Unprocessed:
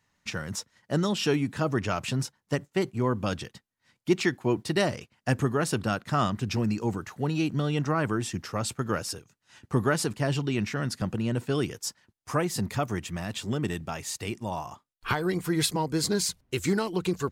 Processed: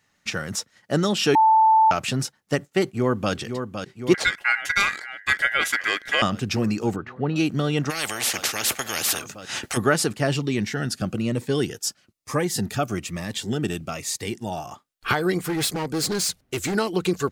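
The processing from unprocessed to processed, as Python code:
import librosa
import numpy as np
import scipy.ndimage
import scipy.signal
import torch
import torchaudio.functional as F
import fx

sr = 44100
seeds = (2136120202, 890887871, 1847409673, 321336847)

y = fx.echo_throw(x, sr, start_s=2.84, length_s=0.49, ms=510, feedback_pct=75, wet_db=-7.5)
y = fx.ring_mod(y, sr, carrier_hz=1800.0, at=(4.14, 6.22))
y = fx.air_absorb(y, sr, metres=370.0, at=(6.96, 7.36))
y = fx.spectral_comp(y, sr, ratio=10.0, at=(7.89, 9.76), fade=0.02)
y = fx.notch_cascade(y, sr, direction='falling', hz=1.1, at=(10.36, 14.69))
y = fx.clip_hard(y, sr, threshold_db=-27.0, at=(15.4, 16.75))
y = fx.edit(y, sr, fx.bleep(start_s=1.35, length_s=0.56, hz=882.0, db=-17.0), tone=tone)
y = fx.low_shelf(y, sr, hz=140.0, db=-8.5)
y = fx.notch(y, sr, hz=980.0, q=7.0)
y = y * 10.0 ** (6.5 / 20.0)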